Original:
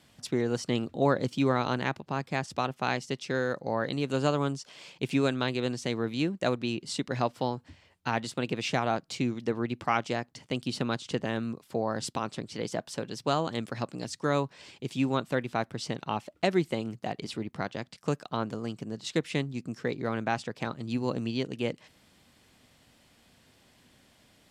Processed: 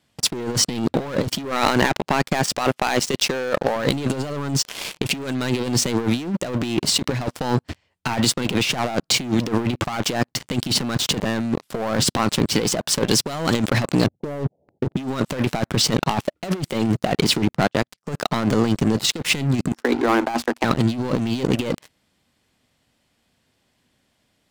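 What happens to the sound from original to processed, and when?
1.45–3.76 low shelf 180 Hz -10.5 dB
13.08–13.54 high shelf 5700 Hz +9 dB
14.06–14.97 steep low-pass 770 Hz 72 dB/oct
17.53–18.12 upward expander, over -51 dBFS
19.72–20.64 rippled Chebyshev high-pass 230 Hz, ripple 9 dB
whole clip: sample leveller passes 5; negative-ratio compressor -20 dBFS, ratio -0.5

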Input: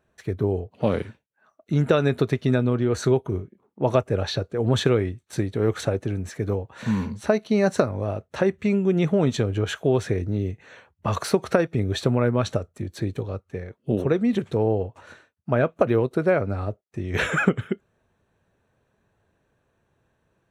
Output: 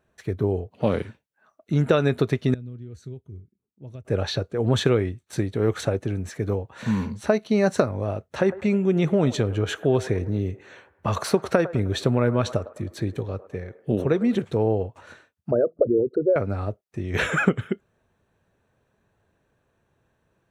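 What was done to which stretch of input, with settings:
2.54–4.05 passive tone stack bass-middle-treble 10-0-1
8.31–14.45 band-limited delay 0.104 s, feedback 48%, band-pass 800 Hz, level -13.5 dB
15.51–16.36 formant sharpening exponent 3

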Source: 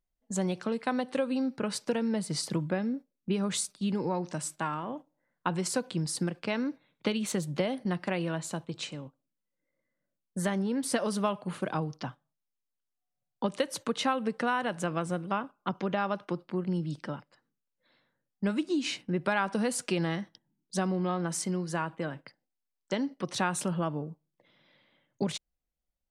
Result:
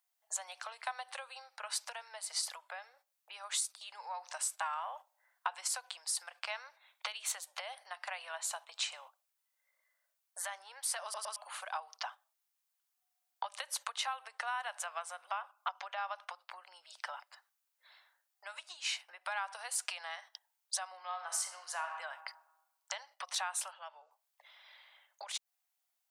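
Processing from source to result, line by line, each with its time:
11.03 stutter in place 0.11 s, 3 plays
21.02–21.84 reverb throw, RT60 1 s, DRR 6 dB
23.71–24.11 speaker cabinet 150–6900 Hz, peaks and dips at 160 Hz +9 dB, 240 Hz +9 dB, 390 Hz -8 dB, 700 Hz -7 dB, 1100 Hz -9 dB
whole clip: high shelf 9300 Hz +7 dB; compressor 6:1, threshold -39 dBFS; steep high-pass 690 Hz 48 dB/oct; gain +7 dB

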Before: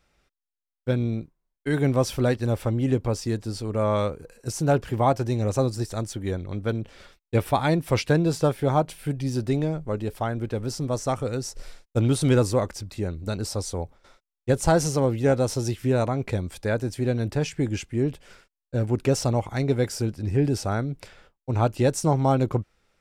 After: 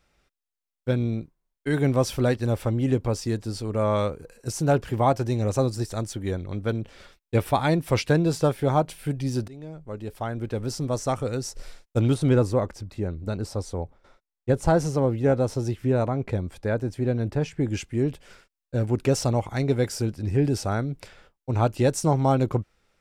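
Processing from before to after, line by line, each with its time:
9.48–10.62 fade in, from -23.5 dB
12.14–17.68 high shelf 2500 Hz -10 dB

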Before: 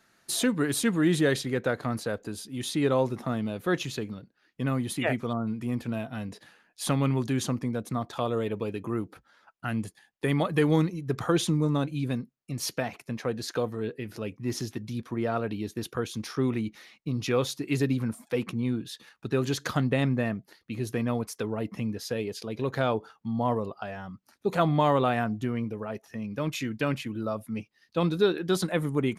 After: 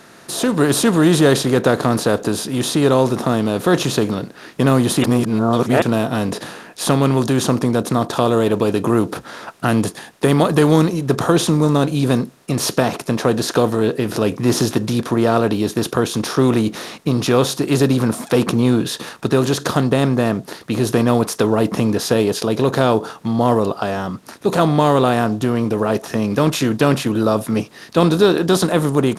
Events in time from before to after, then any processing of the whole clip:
5.04–5.82 reverse
whole clip: per-bin compression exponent 0.6; dynamic EQ 2100 Hz, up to -7 dB, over -47 dBFS, Q 2.1; AGC gain up to 11.5 dB

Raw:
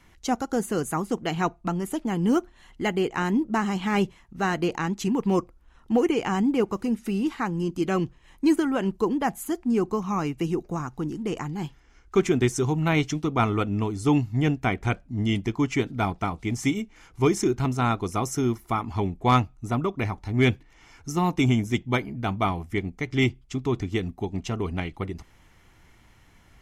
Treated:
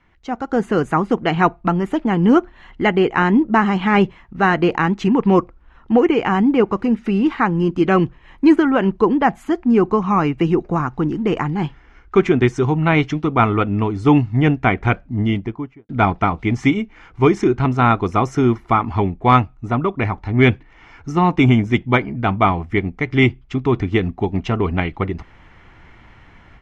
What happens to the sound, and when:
15.02–15.89 studio fade out
whole clip: LPF 2100 Hz 12 dB/oct; tilt shelf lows -3 dB, about 1200 Hz; AGC gain up to 13 dB

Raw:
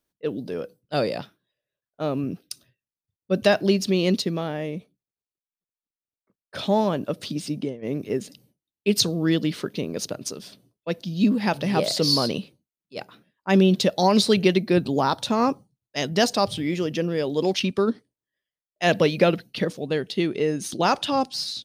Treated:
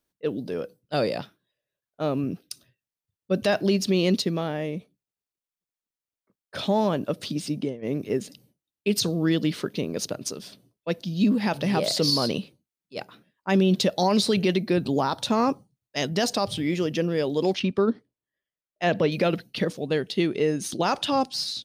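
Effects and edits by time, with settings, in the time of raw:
17.55–19.12 LPF 2200 Hz 6 dB/oct
whole clip: limiter -13 dBFS

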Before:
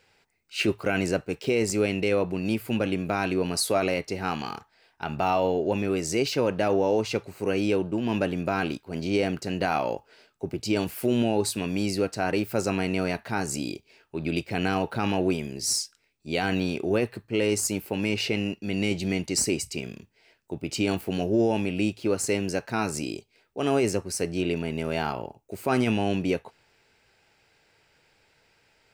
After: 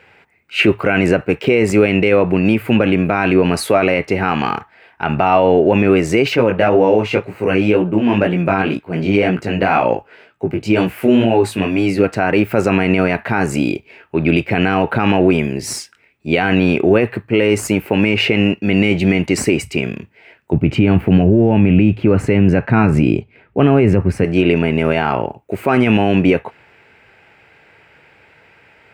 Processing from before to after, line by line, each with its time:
6.36–12.04 chorus 2 Hz, delay 16.5 ms, depth 4.5 ms
20.53–24.24 tone controls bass +12 dB, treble -11 dB
whole clip: HPF 62 Hz; resonant high shelf 3400 Hz -12.5 dB, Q 1.5; maximiser +16.5 dB; gain -1.5 dB

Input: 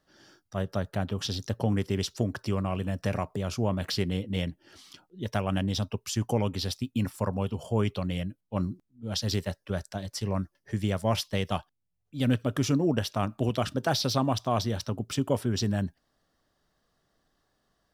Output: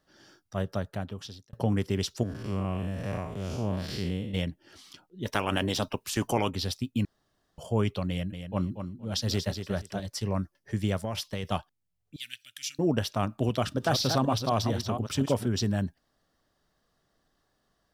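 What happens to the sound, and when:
0.65–1.53 fade out
2.23–4.34 time blur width 0.161 s
5.25–6.49 spectral limiter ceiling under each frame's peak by 16 dB
7.05–7.58 room tone
8.09–10 feedback echo 0.235 s, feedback 20%, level -8 dB
11.04–11.44 compressor 4:1, threshold -28 dBFS
12.16–12.79 inverse Chebyshev high-pass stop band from 1100 Hz
13.53–15.48 reverse delay 0.241 s, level -6.5 dB

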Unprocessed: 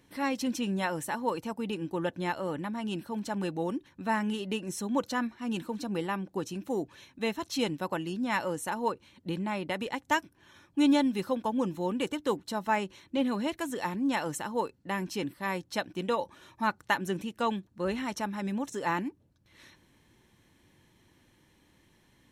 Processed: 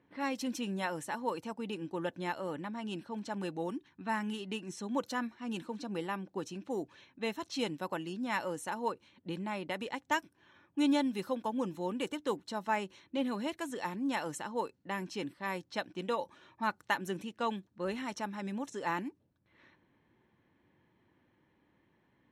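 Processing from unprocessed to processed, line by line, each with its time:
3.69–4.74 bell 540 Hz -12 dB 0.32 oct
whole clip: low-pass opened by the level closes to 1800 Hz, open at -28 dBFS; HPF 150 Hz 6 dB/oct; gain -4 dB

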